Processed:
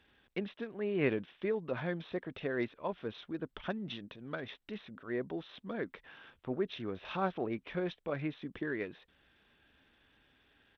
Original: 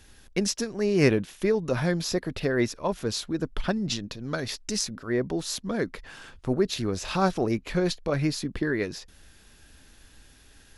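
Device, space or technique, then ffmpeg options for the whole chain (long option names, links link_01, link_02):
Bluetooth headset: -af "highpass=frequency=220:poles=1,aresample=8000,aresample=44100,volume=-8.5dB" -ar 32000 -c:a sbc -b:a 64k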